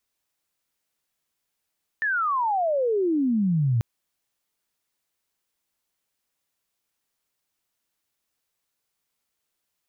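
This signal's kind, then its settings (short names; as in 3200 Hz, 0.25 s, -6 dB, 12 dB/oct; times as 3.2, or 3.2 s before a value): chirp logarithmic 1800 Hz -> 110 Hz -21.5 dBFS -> -18.5 dBFS 1.79 s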